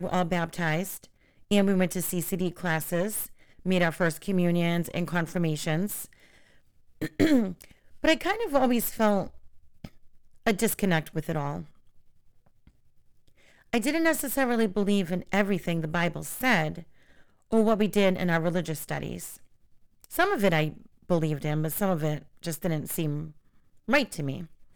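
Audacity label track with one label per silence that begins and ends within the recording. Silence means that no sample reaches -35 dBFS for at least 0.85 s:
6.050000	7.020000	silence
11.620000	13.730000	silence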